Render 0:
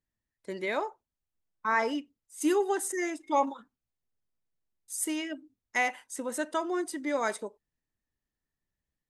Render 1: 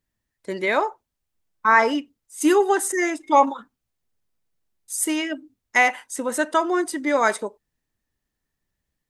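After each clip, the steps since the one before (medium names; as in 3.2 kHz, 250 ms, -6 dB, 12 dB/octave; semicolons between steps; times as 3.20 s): dynamic bell 1.3 kHz, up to +4 dB, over -42 dBFS, Q 0.8; trim +8 dB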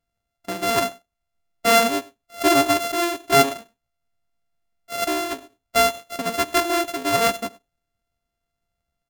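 sorted samples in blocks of 64 samples; delay 99 ms -23 dB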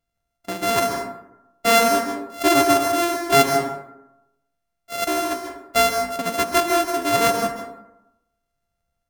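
plate-style reverb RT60 0.87 s, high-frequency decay 0.4×, pre-delay 120 ms, DRR 4 dB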